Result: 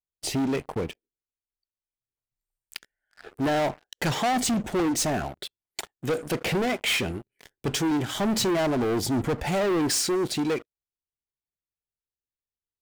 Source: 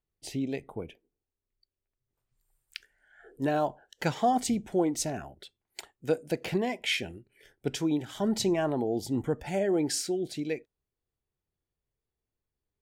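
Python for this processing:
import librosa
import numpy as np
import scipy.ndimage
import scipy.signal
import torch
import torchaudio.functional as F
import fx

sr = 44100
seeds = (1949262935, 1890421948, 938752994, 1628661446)

y = fx.leveller(x, sr, passes=5)
y = y * 10.0 ** (-6.0 / 20.0)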